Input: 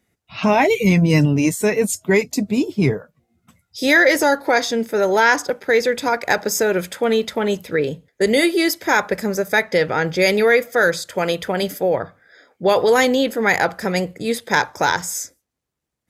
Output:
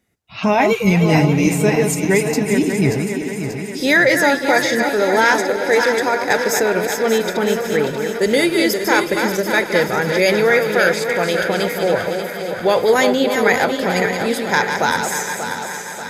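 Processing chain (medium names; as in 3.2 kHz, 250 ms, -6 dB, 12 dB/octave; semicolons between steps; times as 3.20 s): backward echo that repeats 293 ms, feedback 71%, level -6 dB; on a send: thinning echo 368 ms, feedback 80%, high-pass 420 Hz, level -14.5 dB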